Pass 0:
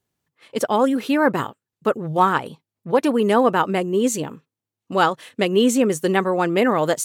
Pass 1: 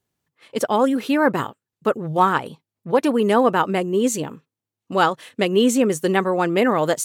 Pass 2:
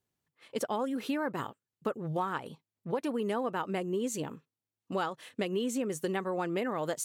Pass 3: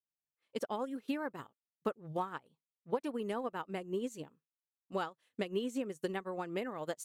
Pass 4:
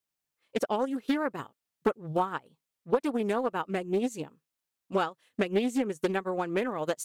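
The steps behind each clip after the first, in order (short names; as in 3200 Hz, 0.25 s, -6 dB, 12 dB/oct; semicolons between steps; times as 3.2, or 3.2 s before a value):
nothing audible
compressor, threshold -22 dBFS, peak gain reduction 11 dB; gain -7 dB
upward expander 2.5:1, over -44 dBFS
Doppler distortion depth 0.34 ms; gain +8.5 dB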